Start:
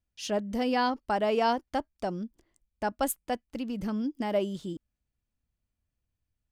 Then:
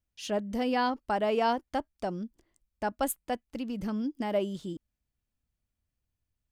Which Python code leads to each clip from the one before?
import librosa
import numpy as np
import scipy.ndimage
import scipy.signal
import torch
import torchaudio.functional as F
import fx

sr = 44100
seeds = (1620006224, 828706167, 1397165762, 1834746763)

y = fx.dynamic_eq(x, sr, hz=5400.0, q=2.4, threshold_db=-53.0, ratio=4.0, max_db=-4)
y = y * 10.0 ** (-1.0 / 20.0)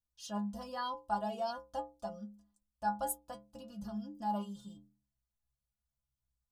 y = fx.fixed_phaser(x, sr, hz=890.0, stages=4)
y = fx.stiff_resonator(y, sr, f0_hz=61.0, decay_s=0.65, stiffness=0.03)
y = y * 10.0 ** (6.0 / 20.0)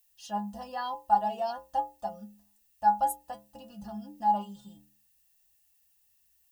y = fx.dmg_noise_colour(x, sr, seeds[0], colour='violet', level_db=-68.0)
y = fx.small_body(y, sr, hz=(800.0, 1800.0, 2700.0), ring_ms=30, db=14)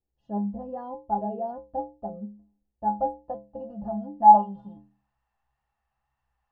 y = fx.filter_sweep_lowpass(x, sr, from_hz=400.0, to_hz=1100.0, start_s=2.78, end_s=5.17, q=2.3)
y = fx.wow_flutter(y, sr, seeds[1], rate_hz=2.1, depth_cents=19.0)
y = y * 10.0 ** (6.5 / 20.0)